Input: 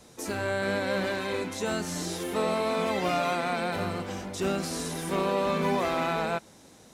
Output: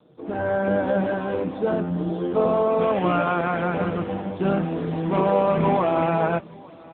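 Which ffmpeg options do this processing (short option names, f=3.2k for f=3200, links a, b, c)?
-filter_complex "[0:a]acrossover=split=3000[a][b];[b]acompressor=threshold=-52dB:ratio=4:attack=1:release=60[c];[a][c]amix=inputs=2:normalize=0,asetnsamples=n=441:p=0,asendcmd='2.81 equalizer g -5.5',equalizer=f=2.2k:w=1.3:g=-14,aecho=1:1:6.4:0.43,dynaudnorm=f=190:g=3:m=8.5dB,aecho=1:1:859|1718:0.0631|0.0177" -ar 8000 -c:a libopencore_amrnb -b:a 6700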